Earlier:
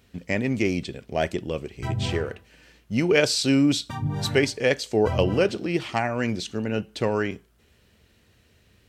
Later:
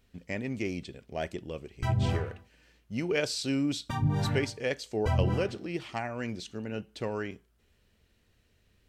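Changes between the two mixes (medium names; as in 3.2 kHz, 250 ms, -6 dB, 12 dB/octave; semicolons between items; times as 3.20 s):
speech -9.5 dB; master: remove high-pass 60 Hz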